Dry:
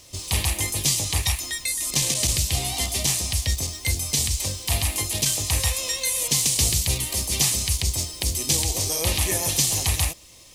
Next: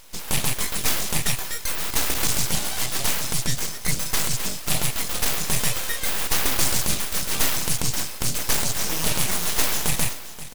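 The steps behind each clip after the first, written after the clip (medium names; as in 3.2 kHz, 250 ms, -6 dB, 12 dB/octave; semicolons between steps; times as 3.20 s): delay 529 ms -14.5 dB; full-wave rectifier; trim +2.5 dB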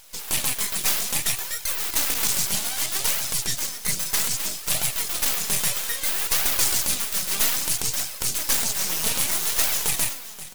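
tilt EQ +1.5 dB/octave; flange 0.62 Hz, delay 1.2 ms, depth 4.4 ms, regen +50%; trim +1 dB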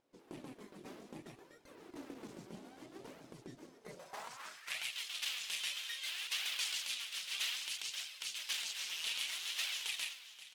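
band-pass sweep 310 Hz -> 3 kHz, 3.68–4.92 s; trim -5 dB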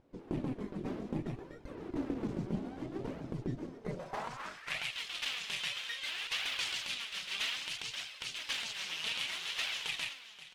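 RIAA curve playback; trim +7.5 dB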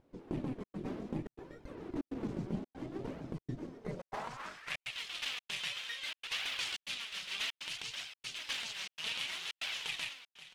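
trance gate "xxxxxx.xxxxx." 142 bpm -60 dB; trim -1.5 dB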